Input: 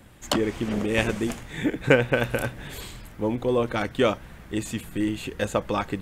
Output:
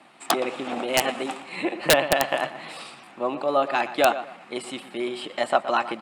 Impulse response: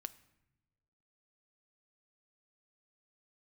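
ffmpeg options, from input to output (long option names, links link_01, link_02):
-filter_complex "[0:a]asetrate=50951,aresample=44100,atempo=0.865537,highpass=frequency=220:width=0.5412,highpass=frequency=220:width=1.3066,equalizer=frequency=250:width_type=q:width=4:gain=-5,equalizer=frequency=430:width_type=q:width=4:gain=-7,equalizer=frequency=770:width_type=q:width=4:gain=10,equalizer=frequency=1200:width_type=q:width=4:gain=7,equalizer=frequency=2600:width_type=q:width=4:gain=5,equalizer=frequency=6100:width_type=q:width=4:gain=-6,lowpass=frequency=8900:width=0.5412,lowpass=frequency=8900:width=1.3066,asplit=2[link_01][link_02];[link_02]adelay=119,lowpass=frequency=3200:poles=1,volume=-13dB,asplit=2[link_03][link_04];[link_04]adelay=119,lowpass=frequency=3200:poles=1,volume=0.29,asplit=2[link_05][link_06];[link_06]adelay=119,lowpass=frequency=3200:poles=1,volume=0.29[link_07];[link_03][link_05][link_07]amix=inputs=3:normalize=0[link_08];[link_01][link_08]amix=inputs=2:normalize=0,aeval=exprs='(mod(2*val(0)+1,2)-1)/2':channel_layout=same"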